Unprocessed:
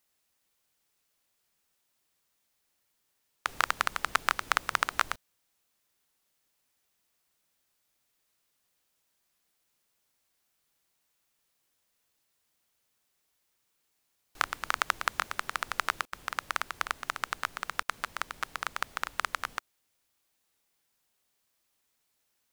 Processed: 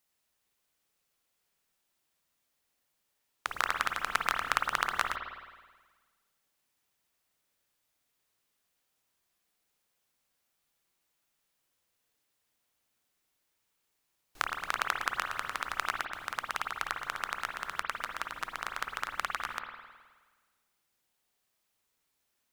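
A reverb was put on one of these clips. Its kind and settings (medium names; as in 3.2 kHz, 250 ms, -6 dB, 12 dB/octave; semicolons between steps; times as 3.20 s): spring tank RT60 1.4 s, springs 52 ms, chirp 35 ms, DRR 3 dB; trim -3 dB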